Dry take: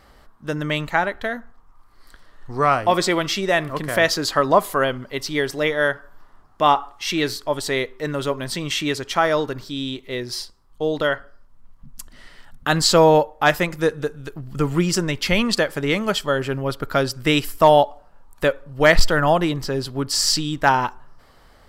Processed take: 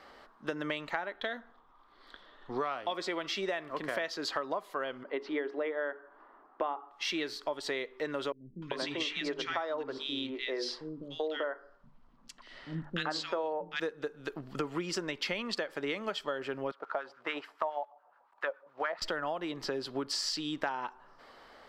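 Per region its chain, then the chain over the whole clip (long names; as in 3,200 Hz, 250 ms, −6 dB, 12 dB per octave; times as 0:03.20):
0:01.17–0:02.93: parametric band 3,500 Hz +14 dB 0.34 octaves + one half of a high-frequency compander decoder only
0:05.03–0:06.91: low-pass filter 1,800 Hz + low shelf with overshoot 200 Hz −13 dB, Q 1.5 + mains-hum notches 60/120/180/240/300/360/420 Hz
0:08.32–0:13.80: high-frequency loss of the air 66 metres + mains-hum notches 50/100/150/200/250/300/350/400/450/500 Hz + three-band delay without the direct sound lows, highs, mids 300/390 ms, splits 240/1,800 Hz
0:16.71–0:19.02: one scale factor per block 5 bits + auto-filter band-pass sine 7.1 Hz 700–1,500 Hz
whole clip: three-way crossover with the lows and the highs turned down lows −20 dB, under 240 Hz, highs −15 dB, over 5,400 Hz; downward compressor 12 to 1, threshold −31 dBFS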